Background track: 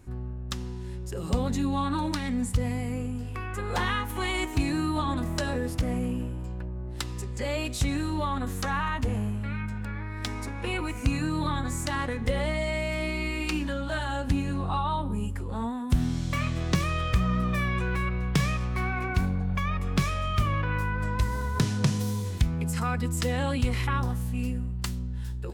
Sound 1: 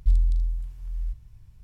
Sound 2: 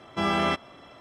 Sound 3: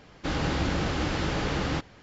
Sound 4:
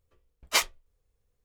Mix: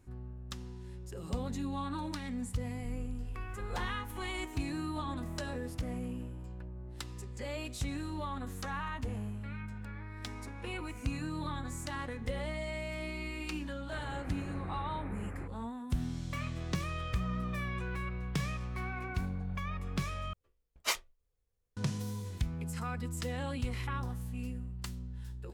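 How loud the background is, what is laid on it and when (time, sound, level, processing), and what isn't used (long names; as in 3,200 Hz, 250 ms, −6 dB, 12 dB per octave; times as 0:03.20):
background track −9.5 dB
0:02.79: mix in 1 −5 dB + downward compressor 5 to 1, threshold −35 dBFS
0:13.67: mix in 3 −17.5 dB + Butterworth low-pass 2,500 Hz 96 dB per octave
0:20.33: overwrite with 4 −8 dB
not used: 2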